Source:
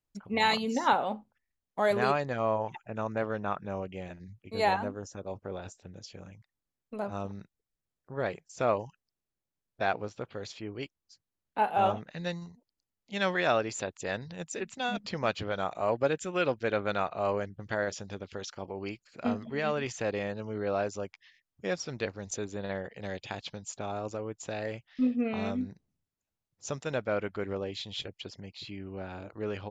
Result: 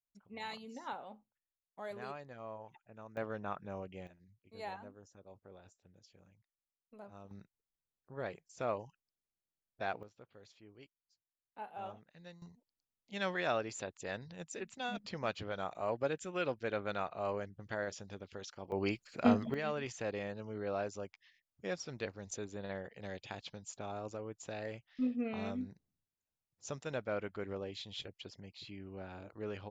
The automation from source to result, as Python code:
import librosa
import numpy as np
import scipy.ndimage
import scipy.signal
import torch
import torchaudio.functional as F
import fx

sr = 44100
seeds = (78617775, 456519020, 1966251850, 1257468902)

y = fx.gain(x, sr, db=fx.steps((0.0, -18.0), (3.17, -8.0), (4.07, -17.5), (7.31, -9.0), (10.03, -19.0), (12.42, -7.5), (18.72, 3.0), (19.54, -7.0)))